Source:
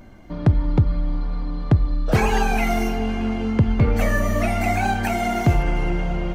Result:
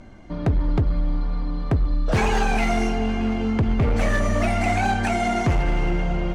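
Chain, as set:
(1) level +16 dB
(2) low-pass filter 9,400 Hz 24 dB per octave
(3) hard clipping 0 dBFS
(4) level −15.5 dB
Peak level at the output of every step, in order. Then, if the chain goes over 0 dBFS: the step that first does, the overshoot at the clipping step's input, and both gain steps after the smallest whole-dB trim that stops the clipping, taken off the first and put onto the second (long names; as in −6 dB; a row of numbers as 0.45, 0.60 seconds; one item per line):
+9.0, +9.0, 0.0, −15.5 dBFS
step 1, 9.0 dB
step 1 +7 dB, step 4 −6.5 dB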